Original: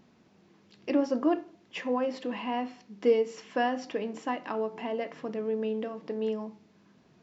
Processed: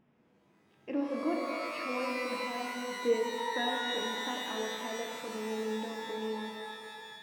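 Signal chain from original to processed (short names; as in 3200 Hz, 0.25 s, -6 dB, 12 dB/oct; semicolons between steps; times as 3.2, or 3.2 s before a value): polynomial smoothing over 25 samples; shimmer reverb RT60 2.3 s, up +12 st, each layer -2 dB, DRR 1.5 dB; gain -8.5 dB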